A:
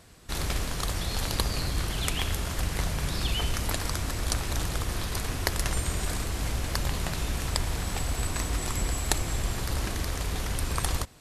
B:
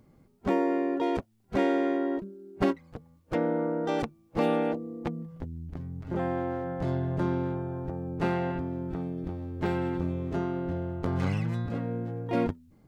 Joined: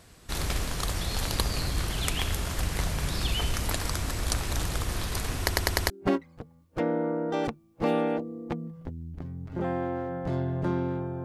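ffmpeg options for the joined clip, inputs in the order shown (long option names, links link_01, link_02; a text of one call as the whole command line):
ffmpeg -i cue0.wav -i cue1.wav -filter_complex "[0:a]apad=whole_dur=11.24,atrim=end=11.24,asplit=5[link_01][link_02][link_03][link_04][link_05];[link_01]atrim=end=5.502[link_06];[link_02]atrim=start=5.398:end=5.502[link_07];[link_03]atrim=start=5.398:end=5.502[link_08];[link_04]atrim=start=5.398:end=5.502[link_09];[link_05]atrim=start=5.398:end=5.502[link_10];[1:a]atrim=start=2.448:end=7.79[link_11];[link_06][link_07]acrossfade=duration=0.004:curve1=hsin:curve2=hsin[link_12];[link_12][link_08]acrossfade=duration=0.004:curve1=hsin:curve2=hsin[link_13];[link_13][link_09]acrossfade=duration=0.004:curve1=hsin:curve2=hsin[link_14];[link_14][link_10]acrossfade=duration=0.004:curve1=hsin:curve2=hsin[link_15];[link_15][link_11]acrossfade=duration=0.004:curve1=hsin:curve2=hsin" out.wav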